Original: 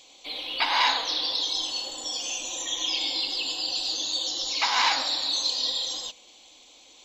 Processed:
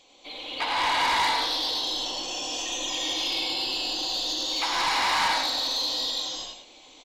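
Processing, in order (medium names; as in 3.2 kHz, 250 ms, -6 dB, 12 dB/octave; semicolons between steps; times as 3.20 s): treble shelf 3.4 kHz -11 dB; on a send: delay 103 ms -7.5 dB; on the sum: gated-style reverb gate 450 ms rising, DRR -5.5 dB; saturation -19 dBFS, distortion -13 dB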